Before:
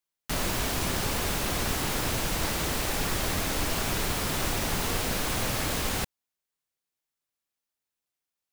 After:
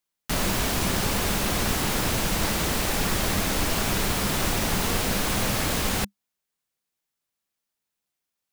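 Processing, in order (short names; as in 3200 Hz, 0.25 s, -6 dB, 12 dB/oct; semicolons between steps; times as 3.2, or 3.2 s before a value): bell 200 Hz +6.5 dB 0.22 oct; gain +3.5 dB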